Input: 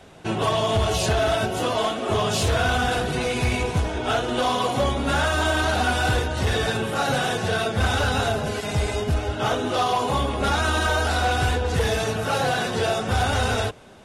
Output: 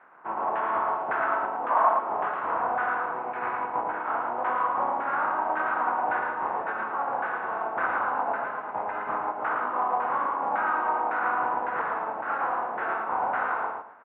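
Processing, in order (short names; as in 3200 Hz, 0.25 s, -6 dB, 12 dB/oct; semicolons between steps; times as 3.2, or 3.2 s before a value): spectral contrast lowered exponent 0.47; LFO low-pass saw down 1.8 Hz 760–1600 Hz; speaker cabinet 410–2100 Hz, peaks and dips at 420 Hz -6 dB, 600 Hz -4 dB, 970 Hz +4 dB, 1800 Hz -3 dB; feedback echo 0.112 s, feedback 25%, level -4 dB; spectral gain 1.7–1.99, 550–1200 Hz +8 dB; gain -6.5 dB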